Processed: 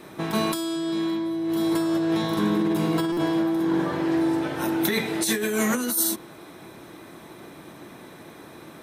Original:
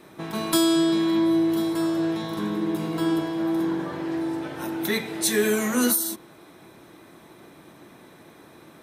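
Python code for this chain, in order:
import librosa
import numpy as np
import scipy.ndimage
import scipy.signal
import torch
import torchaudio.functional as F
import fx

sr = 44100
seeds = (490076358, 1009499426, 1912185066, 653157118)

y = fx.over_compress(x, sr, threshold_db=-26.0, ratio=-1.0)
y = fx.buffer_glitch(y, sr, at_s=(3.12,), block=256, repeats=8)
y = F.gain(torch.from_numpy(y), 2.5).numpy()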